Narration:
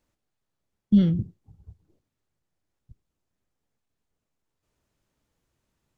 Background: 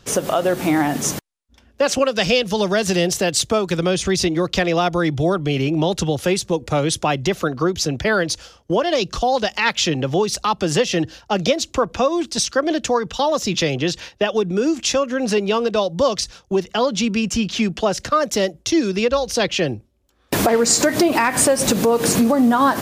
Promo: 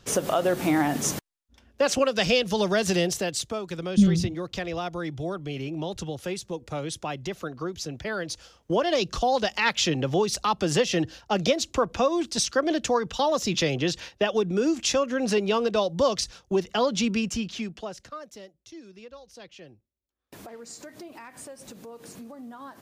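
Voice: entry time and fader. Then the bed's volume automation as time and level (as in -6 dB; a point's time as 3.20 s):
3.05 s, -0.5 dB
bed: 2.96 s -5 dB
3.55 s -13 dB
8.14 s -13 dB
8.80 s -5 dB
17.13 s -5 dB
18.50 s -27 dB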